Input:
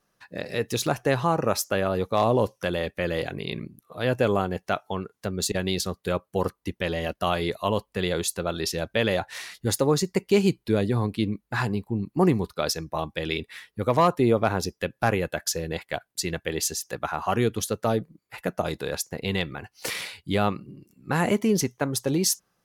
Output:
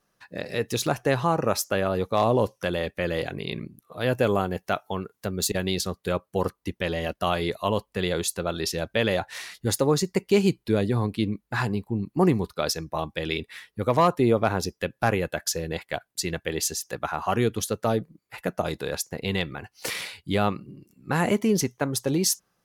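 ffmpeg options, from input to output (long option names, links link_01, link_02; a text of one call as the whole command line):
ffmpeg -i in.wav -filter_complex "[0:a]asettb=1/sr,asplit=3[link_01][link_02][link_03];[link_01]atrim=end=4.014[link_04];[link_02]atrim=start=4.01:end=5.65,asetpts=PTS-STARTPTS,afade=type=in:duration=0.004:curve=qsin,afade=type=out:start_time=1.636:duration=0.004:curve=qsin,equalizer=frequency=15000:width_type=o:width=0.62:gain=8.5[link_05];[link_03]atrim=start=5.646[link_06];[link_04][link_05]acrossfade=duration=0.004:curve1=hsin:curve2=qsin[link_07];[link_07][link_06]acrossfade=duration=0.004:curve1=qsin:curve2=hsin" out.wav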